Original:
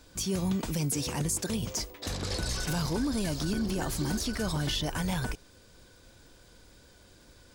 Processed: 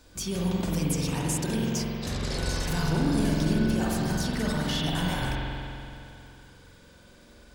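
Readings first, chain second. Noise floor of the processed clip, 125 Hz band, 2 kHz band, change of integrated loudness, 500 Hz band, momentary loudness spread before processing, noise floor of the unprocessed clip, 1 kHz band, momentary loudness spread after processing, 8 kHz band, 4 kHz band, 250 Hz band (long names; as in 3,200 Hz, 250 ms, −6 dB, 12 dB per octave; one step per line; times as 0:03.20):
−54 dBFS, +4.5 dB, +4.0 dB, +3.0 dB, +4.0 dB, 4 LU, −57 dBFS, +4.5 dB, 10 LU, −1.0 dB, +1.5 dB, +4.5 dB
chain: spring reverb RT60 2.7 s, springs 45 ms, chirp 65 ms, DRR −4 dB
level −1 dB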